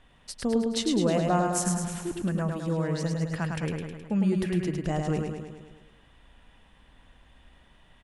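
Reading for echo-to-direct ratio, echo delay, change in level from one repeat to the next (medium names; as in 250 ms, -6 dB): -2.0 dB, 105 ms, -4.5 dB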